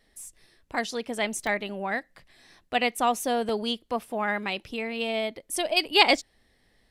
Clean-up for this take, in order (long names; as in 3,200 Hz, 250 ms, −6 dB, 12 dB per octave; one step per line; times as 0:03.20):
repair the gap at 0:01.47/0:02.54/0:03.49/0:04.66/0:05.36, 1.5 ms